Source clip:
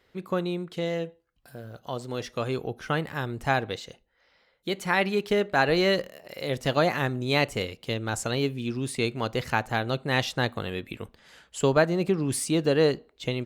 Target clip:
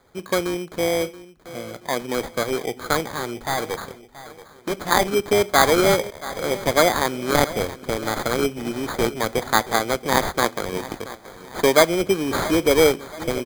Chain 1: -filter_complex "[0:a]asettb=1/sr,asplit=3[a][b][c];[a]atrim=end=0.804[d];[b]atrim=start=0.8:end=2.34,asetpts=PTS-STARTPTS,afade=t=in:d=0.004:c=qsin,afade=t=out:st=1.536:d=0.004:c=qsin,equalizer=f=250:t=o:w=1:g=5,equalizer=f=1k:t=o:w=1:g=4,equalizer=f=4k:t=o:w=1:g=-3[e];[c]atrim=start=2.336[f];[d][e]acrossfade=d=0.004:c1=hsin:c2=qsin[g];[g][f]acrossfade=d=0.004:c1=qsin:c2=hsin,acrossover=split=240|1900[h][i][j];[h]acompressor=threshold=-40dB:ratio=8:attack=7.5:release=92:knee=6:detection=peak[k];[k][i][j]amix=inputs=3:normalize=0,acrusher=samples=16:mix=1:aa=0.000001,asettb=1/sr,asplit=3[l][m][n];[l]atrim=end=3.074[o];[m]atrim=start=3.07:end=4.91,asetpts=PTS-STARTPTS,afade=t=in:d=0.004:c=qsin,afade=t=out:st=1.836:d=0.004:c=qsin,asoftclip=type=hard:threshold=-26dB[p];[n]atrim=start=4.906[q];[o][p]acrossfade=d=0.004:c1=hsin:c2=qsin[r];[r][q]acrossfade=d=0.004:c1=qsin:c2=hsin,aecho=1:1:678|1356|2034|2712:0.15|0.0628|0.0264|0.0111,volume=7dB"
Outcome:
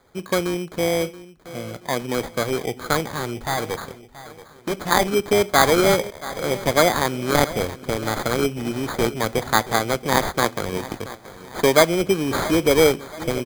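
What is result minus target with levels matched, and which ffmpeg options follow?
compressor: peak gain reduction -9 dB
-filter_complex "[0:a]asettb=1/sr,asplit=3[a][b][c];[a]atrim=end=0.804[d];[b]atrim=start=0.8:end=2.34,asetpts=PTS-STARTPTS,afade=t=in:d=0.004:c=qsin,afade=t=out:st=1.536:d=0.004:c=qsin,equalizer=f=250:t=o:w=1:g=5,equalizer=f=1k:t=o:w=1:g=4,equalizer=f=4k:t=o:w=1:g=-3[e];[c]atrim=start=2.336[f];[d][e]acrossfade=d=0.004:c1=hsin:c2=qsin[g];[g][f]acrossfade=d=0.004:c1=qsin:c2=hsin,acrossover=split=240|1900[h][i][j];[h]acompressor=threshold=-50.5dB:ratio=8:attack=7.5:release=92:knee=6:detection=peak[k];[k][i][j]amix=inputs=3:normalize=0,acrusher=samples=16:mix=1:aa=0.000001,asettb=1/sr,asplit=3[l][m][n];[l]atrim=end=3.074[o];[m]atrim=start=3.07:end=4.91,asetpts=PTS-STARTPTS,afade=t=in:d=0.004:c=qsin,afade=t=out:st=1.836:d=0.004:c=qsin,asoftclip=type=hard:threshold=-26dB[p];[n]atrim=start=4.906[q];[o][p]acrossfade=d=0.004:c1=hsin:c2=qsin[r];[r][q]acrossfade=d=0.004:c1=qsin:c2=hsin,aecho=1:1:678|1356|2034|2712:0.15|0.0628|0.0264|0.0111,volume=7dB"

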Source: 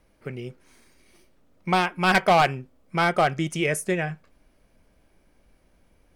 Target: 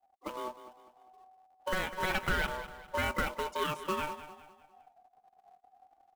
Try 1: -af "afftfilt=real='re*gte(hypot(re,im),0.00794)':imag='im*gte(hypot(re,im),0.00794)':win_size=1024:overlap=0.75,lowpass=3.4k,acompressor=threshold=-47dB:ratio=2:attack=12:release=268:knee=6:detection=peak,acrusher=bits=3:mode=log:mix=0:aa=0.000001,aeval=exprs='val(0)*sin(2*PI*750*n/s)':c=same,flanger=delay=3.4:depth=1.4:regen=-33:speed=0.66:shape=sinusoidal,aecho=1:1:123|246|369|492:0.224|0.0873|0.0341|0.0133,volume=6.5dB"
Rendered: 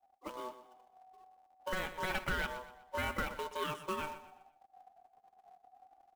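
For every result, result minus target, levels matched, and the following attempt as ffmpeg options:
echo 78 ms early; compressor: peak gain reduction +4.5 dB
-af "afftfilt=real='re*gte(hypot(re,im),0.00794)':imag='im*gte(hypot(re,im),0.00794)':win_size=1024:overlap=0.75,lowpass=3.4k,acompressor=threshold=-47dB:ratio=2:attack=12:release=268:knee=6:detection=peak,acrusher=bits=3:mode=log:mix=0:aa=0.000001,aeval=exprs='val(0)*sin(2*PI*750*n/s)':c=same,flanger=delay=3.4:depth=1.4:regen=-33:speed=0.66:shape=sinusoidal,aecho=1:1:201|402|603|804:0.224|0.0873|0.0341|0.0133,volume=6.5dB"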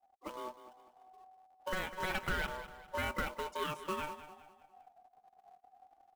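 compressor: peak gain reduction +4.5 dB
-af "afftfilt=real='re*gte(hypot(re,im),0.00794)':imag='im*gte(hypot(re,im),0.00794)':win_size=1024:overlap=0.75,lowpass=3.4k,acompressor=threshold=-38dB:ratio=2:attack=12:release=268:knee=6:detection=peak,acrusher=bits=3:mode=log:mix=0:aa=0.000001,aeval=exprs='val(0)*sin(2*PI*750*n/s)':c=same,flanger=delay=3.4:depth=1.4:regen=-33:speed=0.66:shape=sinusoidal,aecho=1:1:201|402|603|804:0.224|0.0873|0.0341|0.0133,volume=6.5dB"

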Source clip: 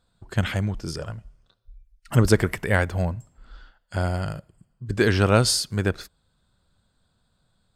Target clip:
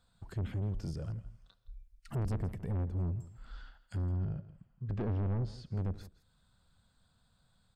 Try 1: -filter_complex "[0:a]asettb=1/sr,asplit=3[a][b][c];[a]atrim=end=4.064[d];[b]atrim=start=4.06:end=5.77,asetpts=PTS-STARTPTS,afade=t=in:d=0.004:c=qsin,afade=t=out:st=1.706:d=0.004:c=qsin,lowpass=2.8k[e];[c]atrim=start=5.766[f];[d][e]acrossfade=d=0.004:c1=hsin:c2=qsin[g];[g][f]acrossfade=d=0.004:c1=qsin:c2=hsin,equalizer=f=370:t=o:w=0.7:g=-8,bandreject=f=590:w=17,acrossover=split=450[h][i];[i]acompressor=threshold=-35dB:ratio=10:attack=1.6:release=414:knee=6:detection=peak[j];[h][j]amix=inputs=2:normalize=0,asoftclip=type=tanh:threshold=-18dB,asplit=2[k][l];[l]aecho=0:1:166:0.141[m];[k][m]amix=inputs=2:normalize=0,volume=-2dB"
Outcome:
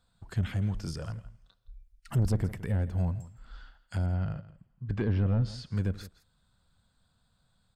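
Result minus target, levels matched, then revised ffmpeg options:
compressor: peak gain reduction -10.5 dB; soft clip: distortion -7 dB
-filter_complex "[0:a]asettb=1/sr,asplit=3[a][b][c];[a]atrim=end=4.064[d];[b]atrim=start=4.06:end=5.77,asetpts=PTS-STARTPTS,afade=t=in:d=0.004:c=qsin,afade=t=out:st=1.706:d=0.004:c=qsin,lowpass=2.8k[e];[c]atrim=start=5.766[f];[d][e]acrossfade=d=0.004:c1=hsin:c2=qsin[g];[g][f]acrossfade=d=0.004:c1=qsin:c2=hsin,equalizer=f=370:t=o:w=0.7:g=-8,bandreject=f=590:w=17,acrossover=split=450[h][i];[i]acompressor=threshold=-46.5dB:ratio=10:attack=1.6:release=414:knee=6:detection=peak[j];[h][j]amix=inputs=2:normalize=0,asoftclip=type=tanh:threshold=-28.5dB,asplit=2[k][l];[l]aecho=0:1:166:0.141[m];[k][m]amix=inputs=2:normalize=0,volume=-2dB"

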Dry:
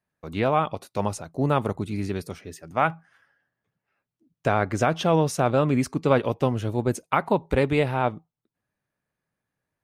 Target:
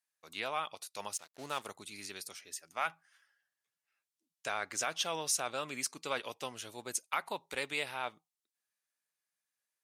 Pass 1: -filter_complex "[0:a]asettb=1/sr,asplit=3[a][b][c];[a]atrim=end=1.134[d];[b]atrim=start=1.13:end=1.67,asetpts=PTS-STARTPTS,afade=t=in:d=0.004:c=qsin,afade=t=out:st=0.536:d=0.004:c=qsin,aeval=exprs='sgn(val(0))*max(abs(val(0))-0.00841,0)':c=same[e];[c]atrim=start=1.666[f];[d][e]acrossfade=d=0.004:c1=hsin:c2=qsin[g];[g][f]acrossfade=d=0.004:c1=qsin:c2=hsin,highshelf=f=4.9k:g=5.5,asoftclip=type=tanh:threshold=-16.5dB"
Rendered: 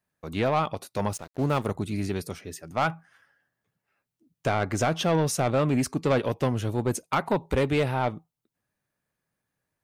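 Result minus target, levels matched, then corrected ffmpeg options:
8000 Hz band -10.5 dB
-filter_complex "[0:a]asettb=1/sr,asplit=3[a][b][c];[a]atrim=end=1.134[d];[b]atrim=start=1.13:end=1.67,asetpts=PTS-STARTPTS,afade=t=in:d=0.004:c=qsin,afade=t=out:st=0.536:d=0.004:c=qsin,aeval=exprs='sgn(val(0))*max(abs(val(0))-0.00841,0)':c=same[e];[c]atrim=start=1.666[f];[d][e]acrossfade=d=0.004:c1=hsin:c2=qsin[g];[g][f]acrossfade=d=0.004:c1=qsin:c2=hsin,bandpass=f=7.3k:t=q:w=0.54:csg=0,highshelf=f=4.9k:g=5.5,asoftclip=type=tanh:threshold=-16.5dB"

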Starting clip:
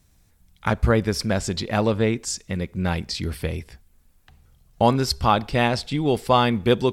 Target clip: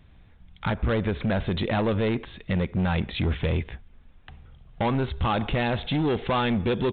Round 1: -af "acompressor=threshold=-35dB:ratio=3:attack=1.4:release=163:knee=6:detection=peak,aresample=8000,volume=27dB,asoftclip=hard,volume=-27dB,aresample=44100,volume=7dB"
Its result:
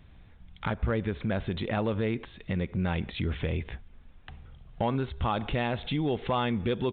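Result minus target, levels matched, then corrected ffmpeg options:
compressor: peak gain reduction +7 dB
-af "acompressor=threshold=-24.5dB:ratio=3:attack=1.4:release=163:knee=6:detection=peak,aresample=8000,volume=27dB,asoftclip=hard,volume=-27dB,aresample=44100,volume=7dB"

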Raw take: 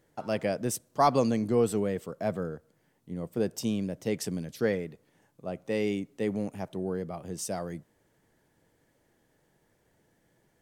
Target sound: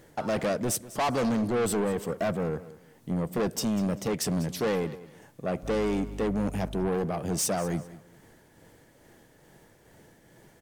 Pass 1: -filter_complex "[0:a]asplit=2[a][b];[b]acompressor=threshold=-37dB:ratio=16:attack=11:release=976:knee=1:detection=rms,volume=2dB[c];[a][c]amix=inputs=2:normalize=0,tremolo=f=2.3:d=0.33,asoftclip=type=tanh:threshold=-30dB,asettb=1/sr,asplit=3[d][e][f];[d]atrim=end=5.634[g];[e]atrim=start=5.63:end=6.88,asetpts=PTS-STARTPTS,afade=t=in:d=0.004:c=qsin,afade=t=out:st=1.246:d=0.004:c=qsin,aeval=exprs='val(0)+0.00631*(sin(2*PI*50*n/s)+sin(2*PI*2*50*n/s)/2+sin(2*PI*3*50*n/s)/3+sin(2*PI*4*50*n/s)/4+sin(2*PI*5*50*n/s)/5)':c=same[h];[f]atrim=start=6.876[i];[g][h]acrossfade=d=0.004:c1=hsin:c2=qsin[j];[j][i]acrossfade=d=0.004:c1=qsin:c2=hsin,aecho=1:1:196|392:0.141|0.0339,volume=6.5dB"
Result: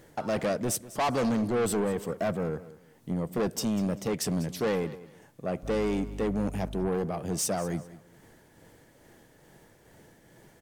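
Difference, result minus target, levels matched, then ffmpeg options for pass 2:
compressor: peak gain reduction +7.5 dB
-filter_complex "[0:a]asplit=2[a][b];[b]acompressor=threshold=-29dB:ratio=16:attack=11:release=976:knee=1:detection=rms,volume=2dB[c];[a][c]amix=inputs=2:normalize=0,tremolo=f=2.3:d=0.33,asoftclip=type=tanh:threshold=-30dB,asettb=1/sr,asplit=3[d][e][f];[d]atrim=end=5.634[g];[e]atrim=start=5.63:end=6.88,asetpts=PTS-STARTPTS,afade=t=in:d=0.004:c=qsin,afade=t=out:st=1.246:d=0.004:c=qsin,aeval=exprs='val(0)+0.00631*(sin(2*PI*50*n/s)+sin(2*PI*2*50*n/s)/2+sin(2*PI*3*50*n/s)/3+sin(2*PI*4*50*n/s)/4+sin(2*PI*5*50*n/s)/5)':c=same[h];[f]atrim=start=6.876[i];[g][h]acrossfade=d=0.004:c1=hsin:c2=qsin[j];[j][i]acrossfade=d=0.004:c1=qsin:c2=hsin,aecho=1:1:196|392:0.141|0.0339,volume=6.5dB"

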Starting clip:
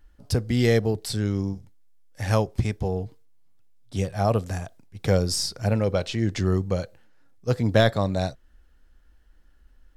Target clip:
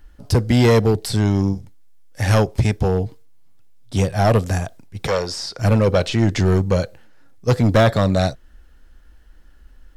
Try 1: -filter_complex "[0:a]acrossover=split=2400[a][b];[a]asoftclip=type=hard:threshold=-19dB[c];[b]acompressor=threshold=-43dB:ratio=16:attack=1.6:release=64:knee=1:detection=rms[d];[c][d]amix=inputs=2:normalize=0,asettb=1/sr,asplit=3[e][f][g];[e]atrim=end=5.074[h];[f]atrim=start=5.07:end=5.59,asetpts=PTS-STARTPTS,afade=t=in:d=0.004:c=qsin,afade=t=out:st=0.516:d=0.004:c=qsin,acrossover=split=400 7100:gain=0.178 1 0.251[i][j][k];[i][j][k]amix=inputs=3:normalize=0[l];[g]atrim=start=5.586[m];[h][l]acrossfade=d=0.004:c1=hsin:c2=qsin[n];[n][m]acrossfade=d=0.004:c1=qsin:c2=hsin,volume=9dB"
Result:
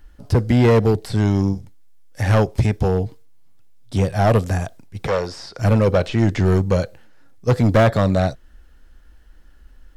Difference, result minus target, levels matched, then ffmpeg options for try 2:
compressor: peak gain reduction +11 dB
-filter_complex "[0:a]acrossover=split=2400[a][b];[a]asoftclip=type=hard:threshold=-19dB[c];[b]acompressor=threshold=-31.5dB:ratio=16:attack=1.6:release=64:knee=1:detection=rms[d];[c][d]amix=inputs=2:normalize=0,asettb=1/sr,asplit=3[e][f][g];[e]atrim=end=5.074[h];[f]atrim=start=5.07:end=5.59,asetpts=PTS-STARTPTS,afade=t=in:d=0.004:c=qsin,afade=t=out:st=0.516:d=0.004:c=qsin,acrossover=split=400 7100:gain=0.178 1 0.251[i][j][k];[i][j][k]amix=inputs=3:normalize=0[l];[g]atrim=start=5.586[m];[h][l]acrossfade=d=0.004:c1=hsin:c2=qsin[n];[n][m]acrossfade=d=0.004:c1=qsin:c2=hsin,volume=9dB"

